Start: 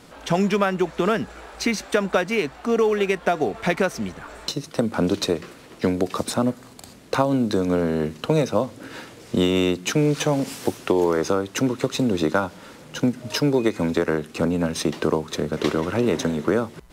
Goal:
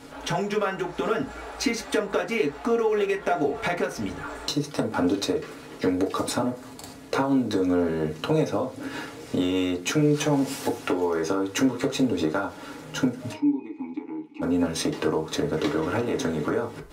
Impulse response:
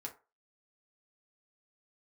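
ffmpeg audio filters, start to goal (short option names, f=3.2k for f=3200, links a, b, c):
-filter_complex "[0:a]acompressor=threshold=-24dB:ratio=6,asplit=3[a][b][c];[a]afade=t=out:st=13.32:d=0.02[d];[b]asplit=3[e][f][g];[e]bandpass=f=300:t=q:w=8,volume=0dB[h];[f]bandpass=f=870:t=q:w=8,volume=-6dB[i];[g]bandpass=f=2.24k:t=q:w=8,volume=-9dB[j];[h][i][j]amix=inputs=3:normalize=0,afade=t=in:st=13.32:d=0.02,afade=t=out:st=14.41:d=0.02[k];[c]afade=t=in:st=14.41:d=0.02[l];[d][k][l]amix=inputs=3:normalize=0[m];[1:a]atrim=start_sample=2205[n];[m][n]afir=irnorm=-1:irlink=0,volume=5dB"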